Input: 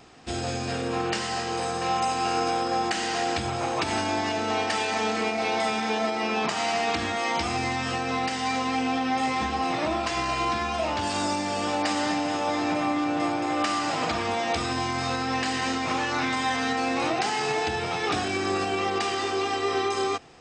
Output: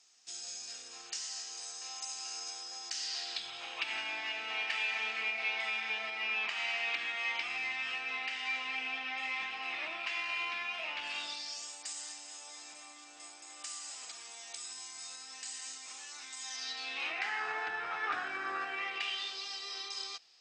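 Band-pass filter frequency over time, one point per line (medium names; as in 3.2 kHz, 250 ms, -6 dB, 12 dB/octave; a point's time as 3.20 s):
band-pass filter, Q 3
2.80 s 6.3 kHz
3.95 s 2.5 kHz
11.12 s 2.5 kHz
11.72 s 7.8 kHz
16.36 s 7.8 kHz
17.44 s 1.5 kHz
18.59 s 1.5 kHz
19.44 s 4.7 kHz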